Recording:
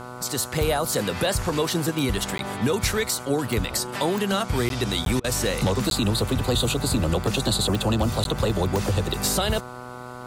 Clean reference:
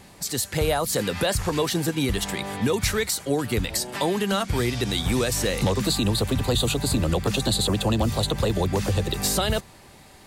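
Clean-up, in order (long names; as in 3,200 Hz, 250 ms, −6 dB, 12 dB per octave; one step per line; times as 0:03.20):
click removal
hum removal 123.9 Hz, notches 12
repair the gap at 0:02.38/0:04.69/0:05.05/0:05.90/0:08.24, 12 ms
repair the gap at 0:05.20, 41 ms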